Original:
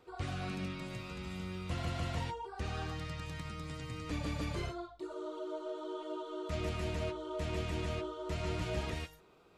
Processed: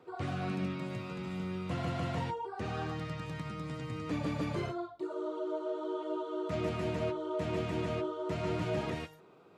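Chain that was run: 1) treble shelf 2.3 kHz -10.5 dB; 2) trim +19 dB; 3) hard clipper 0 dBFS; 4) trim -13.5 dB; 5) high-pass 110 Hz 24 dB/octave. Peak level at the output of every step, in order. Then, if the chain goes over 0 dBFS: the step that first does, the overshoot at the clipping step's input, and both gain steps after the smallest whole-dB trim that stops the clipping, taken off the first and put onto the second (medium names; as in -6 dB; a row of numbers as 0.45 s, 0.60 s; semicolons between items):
-24.5 dBFS, -5.5 dBFS, -5.5 dBFS, -19.0 dBFS, -22.0 dBFS; nothing clips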